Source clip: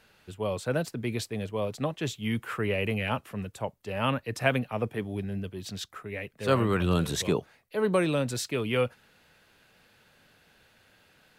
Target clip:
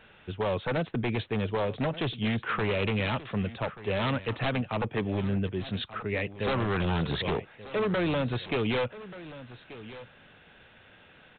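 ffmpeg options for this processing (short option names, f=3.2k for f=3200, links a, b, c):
-af "acompressor=threshold=-30dB:ratio=3,aresample=8000,aeval=exprs='0.0376*(abs(mod(val(0)/0.0376+3,4)-2)-1)':c=same,aresample=44100,aecho=1:1:1183:0.158,volume=6.5dB"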